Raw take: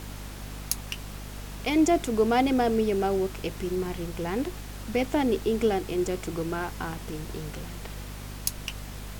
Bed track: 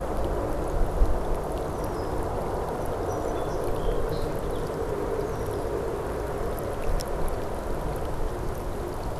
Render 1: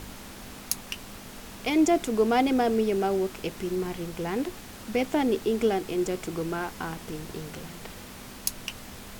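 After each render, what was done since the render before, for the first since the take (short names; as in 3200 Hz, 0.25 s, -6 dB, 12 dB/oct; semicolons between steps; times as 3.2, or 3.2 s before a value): de-hum 50 Hz, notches 3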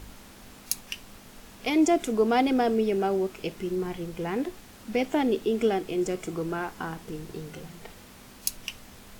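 noise print and reduce 6 dB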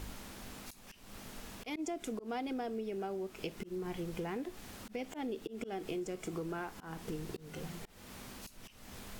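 auto swell 0.288 s; compressor 10:1, threshold -36 dBFS, peak gain reduction 15.5 dB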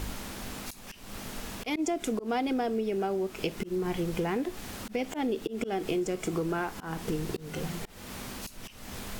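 gain +9 dB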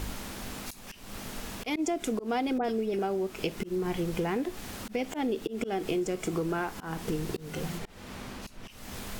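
2.58–2.99 dispersion highs, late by 65 ms, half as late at 2300 Hz; 7.77–8.67 LPF 5100 Hz -> 2600 Hz 6 dB/oct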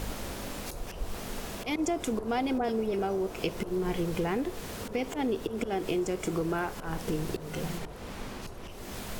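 add bed track -14.5 dB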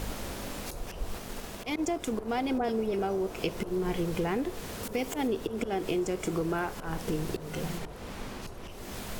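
1.18–2.47 G.711 law mismatch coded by A; 4.83–5.28 high shelf 6800 Hz +10.5 dB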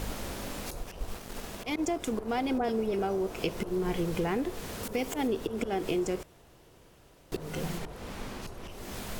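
0.82–1.35 G.711 law mismatch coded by A; 6.23–7.32 room tone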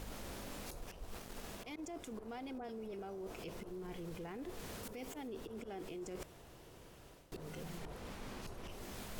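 limiter -27.5 dBFS, peak gain reduction 10.5 dB; reverse; compressor 6:1, threshold -44 dBFS, peak gain reduction 12 dB; reverse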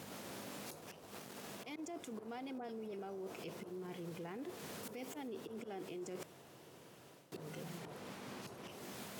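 HPF 120 Hz 24 dB/oct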